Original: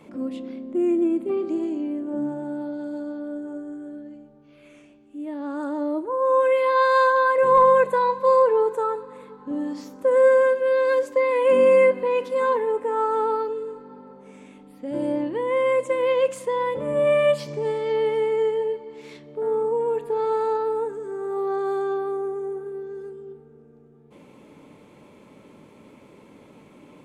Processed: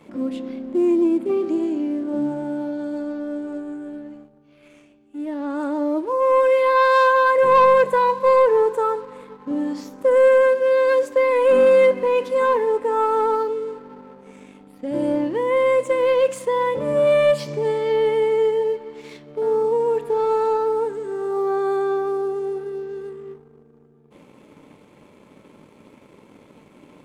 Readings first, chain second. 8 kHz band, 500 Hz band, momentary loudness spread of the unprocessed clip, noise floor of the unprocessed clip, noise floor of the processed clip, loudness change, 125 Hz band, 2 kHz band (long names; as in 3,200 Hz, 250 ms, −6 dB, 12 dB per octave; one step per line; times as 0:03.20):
can't be measured, +3.0 dB, 17 LU, −51 dBFS, −52 dBFS, +3.0 dB, +3.0 dB, +3.0 dB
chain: leveller curve on the samples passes 1